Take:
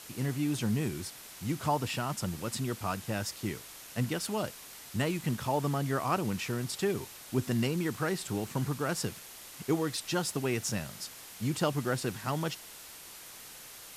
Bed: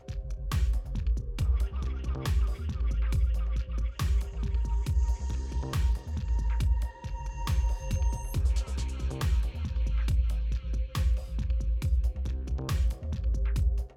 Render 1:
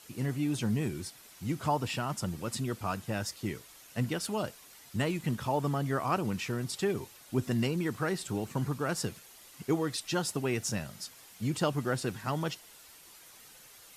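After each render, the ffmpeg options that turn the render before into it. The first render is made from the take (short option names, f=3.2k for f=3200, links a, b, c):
-af "afftdn=nr=8:nf=-49"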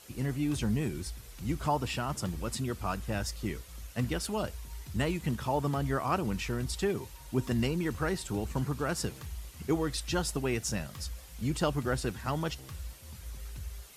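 -filter_complex "[1:a]volume=-14.5dB[a];[0:a][a]amix=inputs=2:normalize=0"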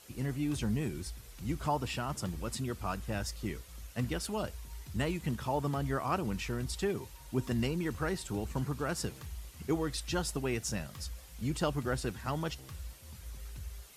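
-af "volume=-2.5dB"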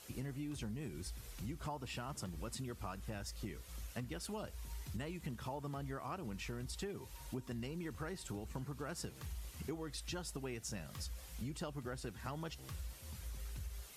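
-af "acompressor=threshold=-41dB:ratio=6"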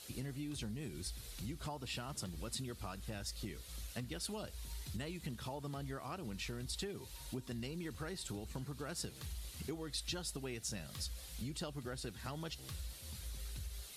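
-af "equalizer=f=1k:t=o:w=0.67:g=-3,equalizer=f=4k:t=o:w=0.67:g=8,equalizer=f=10k:t=o:w=0.67:g=5"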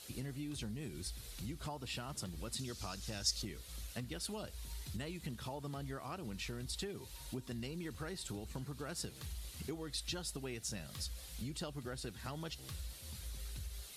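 -filter_complex "[0:a]asettb=1/sr,asplit=3[a][b][c];[a]atrim=end=2.594[d];[b]atrim=start=2.59:end=3.42,asetpts=PTS-STARTPTS,afade=t=in:d=0.004:c=qsin,afade=t=out:st=0.826:d=0.004:c=qsin,equalizer=f=5.7k:t=o:w=1.1:g=13[e];[c]atrim=start=3.416[f];[d][e]acrossfade=d=0.004:c1=hsin:c2=qsin[g];[g][f]acrossfade=d=0.004:c1=qsin:c2=hsin"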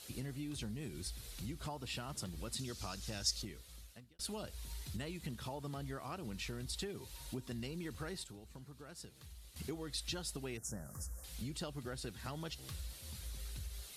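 -filter_complex "[0:a]asettb=1/sr,asplit=3[a][b][c];[a]atrim=end=10.574[d];[b]atrim=start=10.57:end=11.24,asetpts=PTS-STARTPTS,afade=t=in:d=0.004:c=qsin,afade=t=out:st=0.666:d=0.004:c=qsin,asuperstop=centerf=3200:order=8:qfactor=0.7[e];[c]atrim=start=11.236[f];[d][e]acrossfade=d=0.004:c1=hsin:c2=qsin[g];[g][f]acrossfade=d=0.004:c1=qsin:c2=hsin,asplit=4[h][i][j][k];[h]atrim=end=4.19,asetpts=PTS-STARTPTS,afade=t=out:st=3.24:d=0.95[l];[i]atrim=start=4.19:end=8.242,asetpts=PTS-STARTPTS,afade=t=in:d=0.004:c=hsin[m];[j]atrim=start=8.238:end=9.562,asetpts=PTS-STARTPTS,volume=-9dB[n];[k]atrim=start=9.558[o];[l][m]concat=n=2:v=0:a=1[p];[p][n]acrossfade=d=0.004:c1=hsin:c2=hsin[q];[q][o]acrossfade=d=0.004:c1=hsin:c2=hsin"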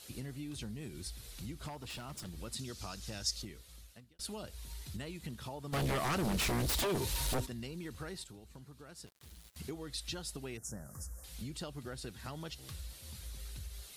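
-filter_complex "[0:a]asettb=1/sr,asplit=3[a][b][c];[a]atrim=end=1.684[d];[b]atrim=start=1.68:end=2.25,asetpts=PTS-STARTPTS,afade=t=in:d=0.004:c=qsin,afade=t=out:st=0.566:d=0.004:c=qsin,aeval=exprs='0.0119*(abs(mod(val(0)/0.0119+3,4)-2)-1)':c=same[e];[c]atrim=start=2.246[f];[d][e]acrossfade=d=0.004:c1=hsin:c2=qsin[g];[g][f]acrossfade=d=0.004:c1=qsin:c2=hsin,asplit=3[h][i][j];[h]afade=t=out:st=5.72:d=0.02[k];[i]aeval=exprs='0.0335*sin(PI/2*4.47*val(0)/0.0335)':c=same,afade=t=in:st=5.72:d=0.02,afade=t=out:st=7.45:d=0.02[l];[j]afade=t=in:st=7.45:d=0.02[m];[k][l][m]amix=inputs=3:normalize=0,asettb=1/sr,asplit=3[n][o][p];[n]atrim=end=9.064[q];[o]atrim=start=9.06:end=9.57,asetpts=PTS-STARTPTS,afade=t=in:d=0.004:c=qsin,afade=t=out:st=0.506:d=0.004:c=qsin,aeval=exprs='val(0)*gte(abs(val(0)),0.00211)':c=same[r];[p]atrim=start=9.566[s];[q][r]acrossfade=d=0.004:c1=hsin:c2=qsin[t];[t][s]acrossfade=d=0.004:c1=qsin:c2=hsin"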